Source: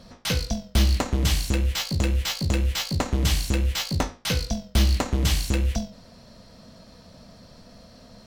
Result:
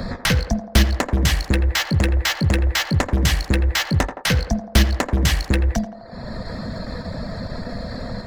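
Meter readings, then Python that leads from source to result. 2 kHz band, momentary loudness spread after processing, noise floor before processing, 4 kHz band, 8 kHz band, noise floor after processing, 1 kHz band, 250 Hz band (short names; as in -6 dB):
+9.5 dB, 12 LU, -50 dBFS, +4.0 dB, +3.0 dB, -38 dBFS, +6.5 dB, +6.0 dB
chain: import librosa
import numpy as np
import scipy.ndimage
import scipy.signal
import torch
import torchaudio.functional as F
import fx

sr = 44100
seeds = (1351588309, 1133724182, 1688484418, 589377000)

p1 = fx.wiener(x, sr, points=15)
p2 = fx.dereverb_blind(p1, sr, rt60_s=0.62)
p3 = fx.level_steps(p2, sr, step_db=18)
p4 = p2 + F.gain(torch.from_numpy(p3), 0.0).numpy()
p5 = fx.peak_eq(p4, sr, hz=1800.0, db=8.5, octaves=0.42)
p6 = p5 + fx.echo_banded(p5, sr, ms=84, feedback_pct=62, hz=680.0, wet_db=-8.0, dry=0)
p7 = fx.band_squash(p6, sr, depth_pct=70)
y = F.gain(torch.from_numpy(p7), 4.0).numpy()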